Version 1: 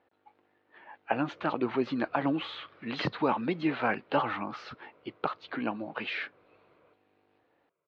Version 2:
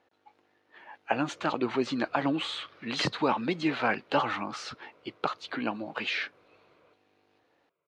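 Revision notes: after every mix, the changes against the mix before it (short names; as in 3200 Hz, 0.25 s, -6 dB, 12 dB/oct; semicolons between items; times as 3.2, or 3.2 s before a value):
master: remove air absorption 270 m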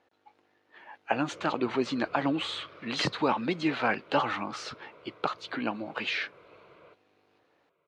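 background +8.5 dB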